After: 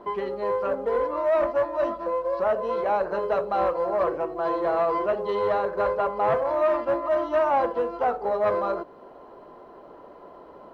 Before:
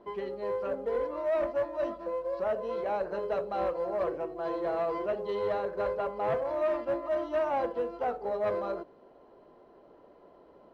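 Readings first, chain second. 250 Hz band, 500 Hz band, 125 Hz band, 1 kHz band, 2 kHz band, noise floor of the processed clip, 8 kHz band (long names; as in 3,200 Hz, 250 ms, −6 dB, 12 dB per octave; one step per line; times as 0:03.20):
+5.0 dB, +6.5 dB, +5.0 dB, +9.5 dB, +7.5 dB, −47 dBFS, can't be measured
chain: parametric band 1,100 Hz +6.5 dB 1.1 octaves
in parallel at −3 dB: downward compressor, threshold −41 dBFS, peak gain reduction 17 dB
on the sum: level +3.5 dB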